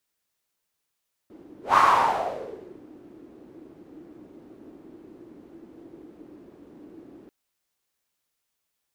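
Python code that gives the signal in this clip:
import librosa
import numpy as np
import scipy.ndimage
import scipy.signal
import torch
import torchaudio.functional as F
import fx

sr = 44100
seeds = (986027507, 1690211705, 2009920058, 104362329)

y = fx.whoosh(sr, seeds[0], length_s=5.99, peak_s=0.46, rise_s=0.16, fall_s=1.13, ends_hz=320.0, peak_hz=1100.0, q=5.4, swell_db=30)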